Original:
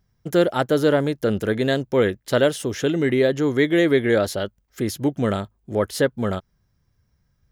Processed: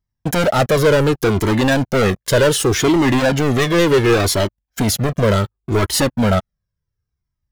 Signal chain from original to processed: sample leveller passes 5; cascading flanger falling 0.68 Hz

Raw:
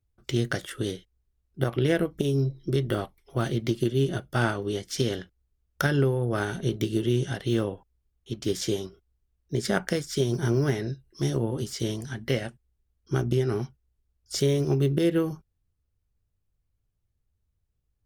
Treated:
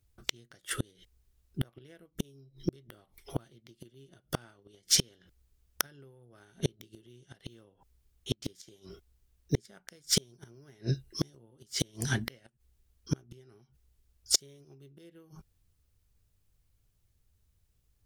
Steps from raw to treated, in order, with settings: flipped gate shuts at -20 dBFS, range -36 dB; high shelf 2300 Hz +7.5 dB; gain +4.5 dB

